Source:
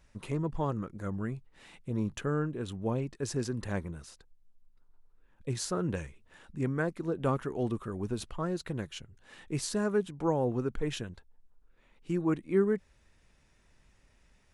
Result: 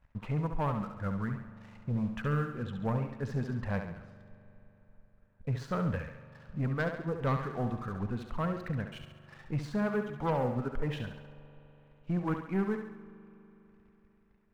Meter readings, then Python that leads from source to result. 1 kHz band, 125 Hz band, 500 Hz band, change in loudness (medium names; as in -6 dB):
+2.0 dB, +2.0 dB, -3.5 dB, -1.0 dB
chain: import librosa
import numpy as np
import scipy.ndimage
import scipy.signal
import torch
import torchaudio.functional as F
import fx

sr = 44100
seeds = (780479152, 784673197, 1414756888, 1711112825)

p1 = scipy.signal.sosfilt(scipy.signal.butter(2, 1700.0, 'lowpass', fs=sr, output='sos'), x)
p2 = fx.dereverb_blind(p1, sr, rt60_s=1.0)
p3 = fx.peak_eq(p2, sr, hz=360.0, db=-12.5, octaves=0.69)
p4 = fx.leveller(p3, sr, passes=2)
p5 = p4 + fx.echo_thinned(p4, sr, ms=69, feedback_pct=53, hz=190.0, wet_db=-7, dry=0)
p6 = fx.rev_spring(p5, sr, rt60_s=3.8, pass_ms=(41,), chirp_ms=70, drr_db=15.5)
y = p6 * 10.0 ** (-2.0 / 20.0)